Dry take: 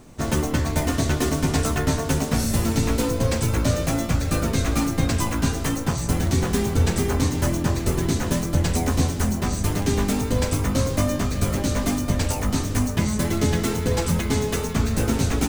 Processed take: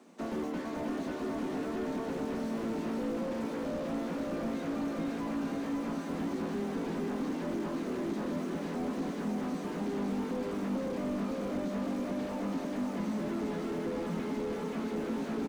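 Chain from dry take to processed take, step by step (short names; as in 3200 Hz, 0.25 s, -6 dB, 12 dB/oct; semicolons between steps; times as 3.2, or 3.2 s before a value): steep high-pass 180 Hz 72 dB/oct; high shelf 6300 Hz -11 dB; feedback echo 0.535 s, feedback 58%, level -5.5 dB; limiter -16.5 dBFS, peak gain reduction 7.5 dB; slew limiter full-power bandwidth 28 Hz; gain -7.5 dB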